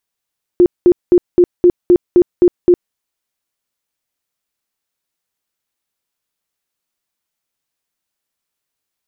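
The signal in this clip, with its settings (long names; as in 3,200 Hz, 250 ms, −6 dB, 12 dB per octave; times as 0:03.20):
tone bursts 354 Hz, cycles 21, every 0.26 s, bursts 9, −4 dBFS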